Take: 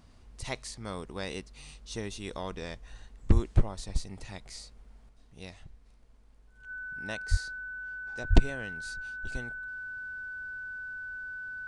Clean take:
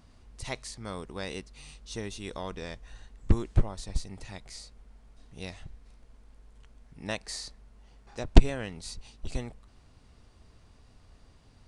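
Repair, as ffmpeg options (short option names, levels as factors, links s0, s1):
-filter_complex "[0:a]bandreject=f=1500:w=30,asplit=3[s0][s1][s2];[s0]afade=t=out:st=3.33:d=0.02[s3];[s1]highpass=f=140:w=0.5412,highpass=f=140:w=1.3066,afade=t=in:st=3.33:d=0.02,afade=t=out:st=3.45:d=0.02[s4];[s2]afade=t=in:st=3.45:d=0.02[s5];[s3][s4][s5]amix=inputs=3:normalize=0,asplit=3[s6][s7][s8];[s6]afade=t=out:st=7.3:d=0.02[s9];[s7]highpass=f=140:w=0.5412,highpass=f=140:w=1.3066,afade=t=in:st=7.3:d=0.02,afade=t=out:st=7.42:d=0.02[s10];[s8]afade=t=in:st=7.42:d=0.02[s11];[s9][s10][s11]amix=inputs=3:normalize=0,asplit=3[s12][s13][s14];[s12]afade=t=out:st=8.29:d=0.02[s15];[s13]highpass=f=140:w=0.5412,highpass=f=140:w=1.3066,afade=t=in:st=8.29:d=0.02,afade=t=out:st=8.41:d=0.02[s16];[s14]afade=t=in:st=8.41:d=0.02[s17];[s15][s16][s17]amix=inputs=3:normalize=0,asetnsamples=n=441:p=0,asendcmd='5.09 volume volume 5dB',volume=1"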